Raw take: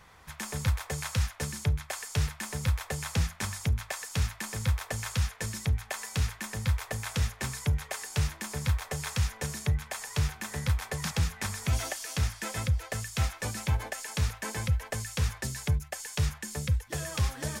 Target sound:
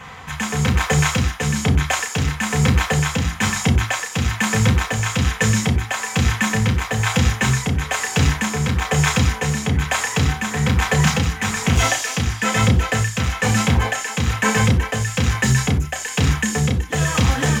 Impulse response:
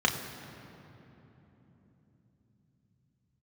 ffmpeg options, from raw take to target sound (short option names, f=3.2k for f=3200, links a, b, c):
-filter_complex "[0:a]volume=30dB,asoftclip=hard,volume=-30dB,tremolo=f=1.1:d=0.42[a];[1:a]atrim=start_sample=2205,atrim=end_sample=4410[b];[a][b]afir=irnorm=-1:irlink=0,volume=8dB"